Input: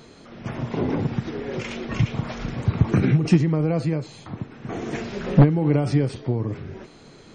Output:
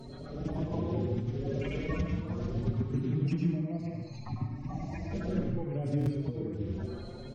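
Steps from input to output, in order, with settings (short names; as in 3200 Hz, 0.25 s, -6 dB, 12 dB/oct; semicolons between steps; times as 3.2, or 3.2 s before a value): bin magnitudes rounded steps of 30 dB; low shelf 340 Hz +10.5 dB; compressor 5:1, threshold -28 dBFS, peak gain reduction 23.5 dB; 3.51–5.11 fixed phaser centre 2200 Hz, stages 8; reverb RT60 0.75 s, pre-delay 92 ms, DRR 1.5 dB; stuck buffer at 5.99, samples 1024, times 2; endless flanger 5.1 ms +0.68 Hz; gain -1 dB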